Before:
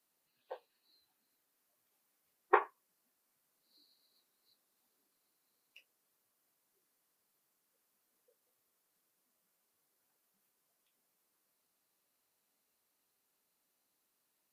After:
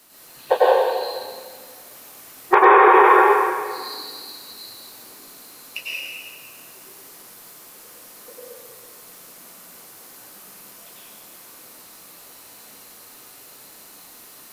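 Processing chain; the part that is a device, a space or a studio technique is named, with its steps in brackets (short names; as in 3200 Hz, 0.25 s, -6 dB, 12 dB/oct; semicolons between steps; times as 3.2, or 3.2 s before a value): plate-style reverb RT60 1.7 s, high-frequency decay 1×, pre-delay 85 ms, DRR -8 dB; loud club master (compressor 2:1, threshold -35 dBFS, peak gain reduction 9 dB; hard clip -20.5 dBFS, distortion -35 dB; maximiser +30 dB); gain -2 dB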